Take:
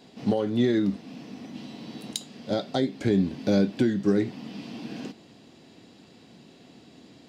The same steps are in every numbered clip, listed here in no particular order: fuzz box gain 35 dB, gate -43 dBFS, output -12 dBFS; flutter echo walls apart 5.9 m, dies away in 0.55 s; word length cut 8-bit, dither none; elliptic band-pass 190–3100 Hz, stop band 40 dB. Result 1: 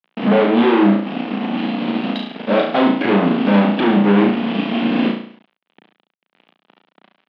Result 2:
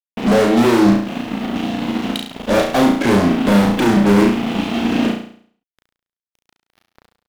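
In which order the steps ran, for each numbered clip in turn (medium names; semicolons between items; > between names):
fuzz box > flutter echo > word length cut > elliptic band-pass; elliptic band-pass > fuzz box > word length cut > flutter echo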